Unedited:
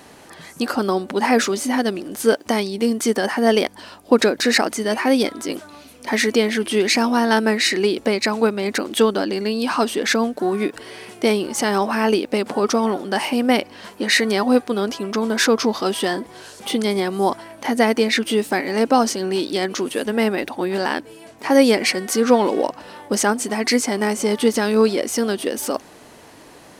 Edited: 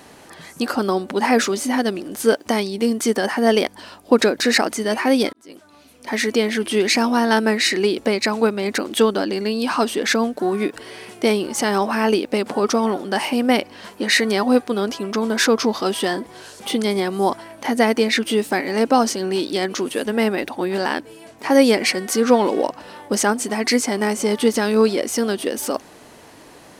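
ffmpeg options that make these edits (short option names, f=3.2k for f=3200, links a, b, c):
-filter_complex "[0:a]asplit=2[a][b];[a]atrim=end=5.33,asetpts=PTS-STARTPTS,afade=t=out:st=5.326:d=0.004:c=hsin[c];[b]atrim=start=5.33,asetpts=PTS-STARTPTS,afade=t=in:d=1.6:c=qsin[d];[c][d]concat=n=2:v=0:a=1"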